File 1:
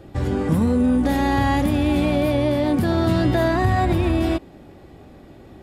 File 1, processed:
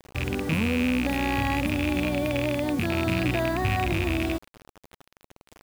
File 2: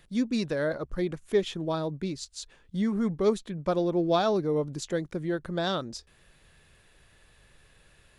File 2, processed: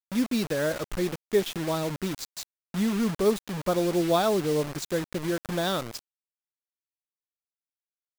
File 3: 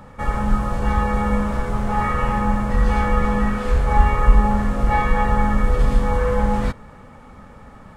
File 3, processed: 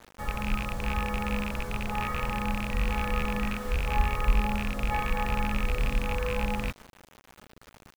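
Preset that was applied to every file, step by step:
loose part that buzzes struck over −20 dBFS, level −10 dBFS
bit-depth reduction 6 bits, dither none
normalise the peak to −12 dBFS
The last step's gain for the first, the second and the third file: −7.0, +1.0, −11.0 decibels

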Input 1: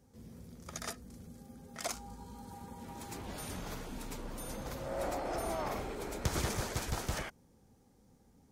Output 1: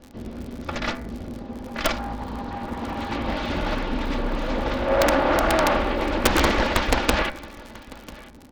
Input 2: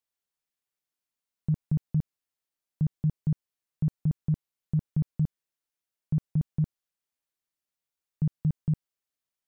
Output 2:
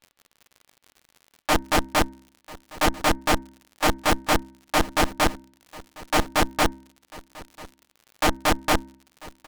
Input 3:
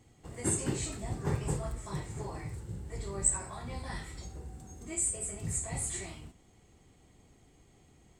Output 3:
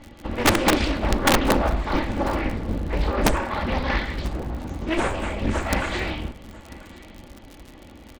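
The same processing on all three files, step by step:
lower of the sound and its delayed copy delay 3.5 ms
low-pass filter 3,800 Hz 24 dB per octave
hum removal 66.46 Hz, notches 36
dynamic equaliser 120 Hz, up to −6 dB, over −51 dBFS, Q 1.3
surface crackle 79 per second −51 dBFS
wrap-around overflow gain 28.5 dB
single-tap delay 993 ms −21 dB
highs frequency-modulated by the lows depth 0.73 ms
loudness normalisation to −24 LKFS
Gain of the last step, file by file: +19.5, +14.0, +19.5 decibels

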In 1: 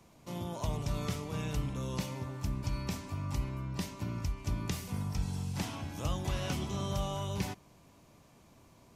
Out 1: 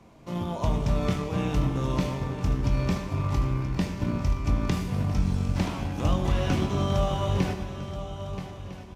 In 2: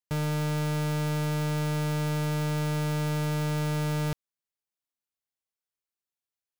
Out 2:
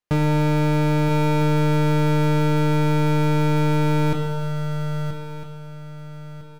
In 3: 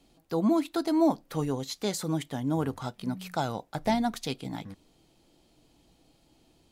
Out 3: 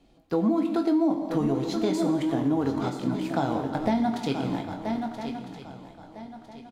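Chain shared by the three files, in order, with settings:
on a send: feedback echo with a long and a short gap by turns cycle 1,304 ms, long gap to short 3 to 1, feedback 33%, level −10 dB
on the sum: dynamic equaliser 290 Hz, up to +4 dB, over −42 dBFS, Q 2.1
in parallel at −11.5 dB: centre clipping without the shift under −32 dBFS
on the sum: low-pass filter 2,300 Hz 6 dB per octave
double-tracking delay 22 ms −9.5 dB
reverb whose tail is shaped and stops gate 400 ms falling, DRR 7 dB
downward compressor 4 to 1, threshold −24 dBFS
normalise the peak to −12 dBFS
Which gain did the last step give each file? +6.5, +9.0, +2.5 decibels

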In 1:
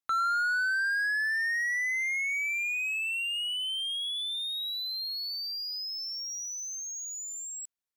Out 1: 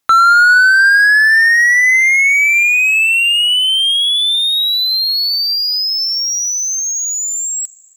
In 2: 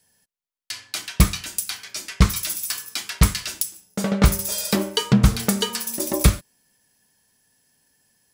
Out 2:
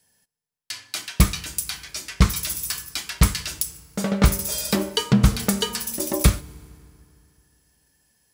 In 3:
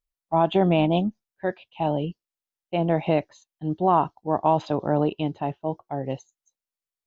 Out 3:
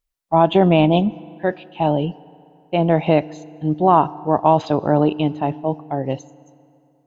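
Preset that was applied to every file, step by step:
feedback delay network reverb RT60 2.7 s, high-frequency decay 0.7×, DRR 19.5 dB
normalise the peak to −2 dBFS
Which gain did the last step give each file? +19.5, −1.0, +6.0 decibels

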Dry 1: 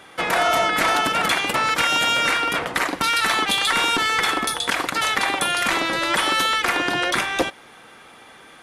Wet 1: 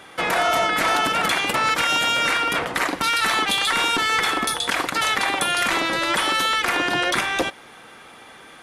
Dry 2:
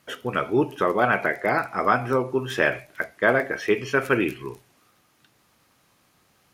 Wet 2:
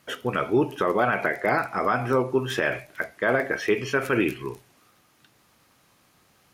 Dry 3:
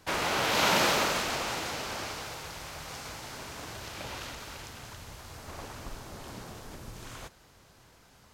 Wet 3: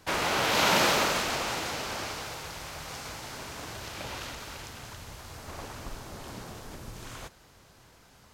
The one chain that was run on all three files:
brickwall limiter −13.5 dBFS
normalise the peak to −12 dBFS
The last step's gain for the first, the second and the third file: +1.5, +1.5, +1.5 decibels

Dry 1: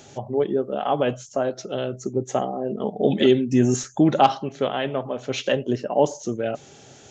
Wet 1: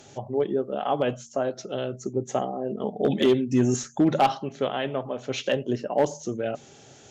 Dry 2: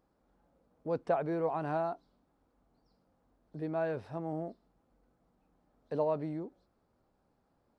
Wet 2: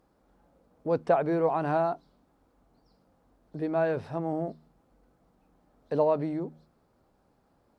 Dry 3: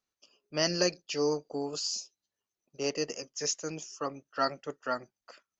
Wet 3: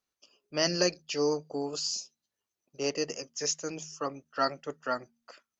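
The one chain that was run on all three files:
hum removal 77.81 Hz, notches 3
asymmetric clip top −11 dBFS, bottom −9.5 dBFS
normalise the peak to −12 dBFS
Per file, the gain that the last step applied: −3.0, +6.5, +1.0 decibels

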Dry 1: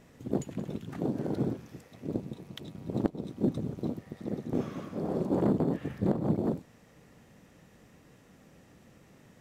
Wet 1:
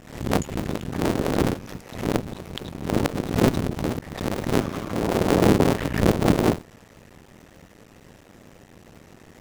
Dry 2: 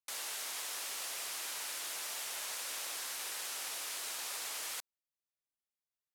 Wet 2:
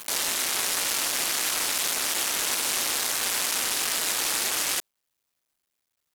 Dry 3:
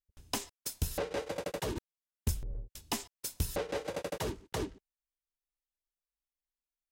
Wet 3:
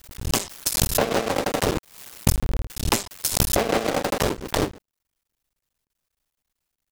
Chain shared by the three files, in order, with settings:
sub-harmonics by changed cycles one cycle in 2, muted
background raised ahead of every attack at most 94 dB per second
loudness normalisation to −24 LKFS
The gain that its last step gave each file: +11.0, +17.0, +16.0 decibels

